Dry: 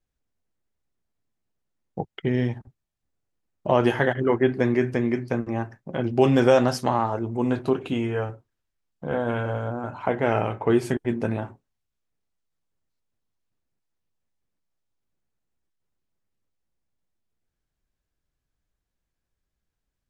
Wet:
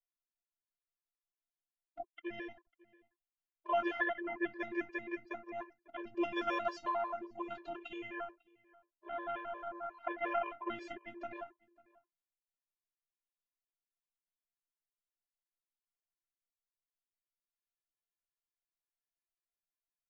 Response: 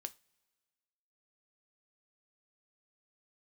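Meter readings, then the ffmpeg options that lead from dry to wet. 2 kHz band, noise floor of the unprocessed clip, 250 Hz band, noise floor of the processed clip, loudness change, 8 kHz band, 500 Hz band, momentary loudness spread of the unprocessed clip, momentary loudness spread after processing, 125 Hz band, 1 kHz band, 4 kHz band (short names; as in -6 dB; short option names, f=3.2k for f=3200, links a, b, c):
-9.0 dB, -82 dBFS, -18.5 dB, under -85 dBFS, -15.5 dB, under -20 dB, -18.0 dB, 12 LU, 14 LU, -39.0 dB, -10.5 dB, -13.5 dB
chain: -filter_complex "[0:a]agate=range=-8dB:threshold=-34dB:ratio=16:detection=peak,acrossover=split=580 3600:gain=0.158 1 0.178[a][b][c];[a][b][c]amix=inputs=3:normalize=0,afftfilt=real='hypot(re,im)*cos(PI*b)':imag='0':win_size=512:overlap=0.75,asplit=2[d][e];[e]adelay=548.1,volume=-23dB,highshelf=f=4k:g=-12.3[f];[d][f]amix=inputs=2:normalize=0,aresample=16000,aresample=44100,afftfilt=real='re*gt(sin(2*PI*5.6*pts/sr)*(1-2*mod(floor(b*sr/1024/310),2)),0)':imag='im*gt(sin(2*PI*5.6*pts/sr)*(1-2*mod(floor(b*sr/1024/310),2)),0)':win_size=1024:overlap=0.75,volume=-1.5dB"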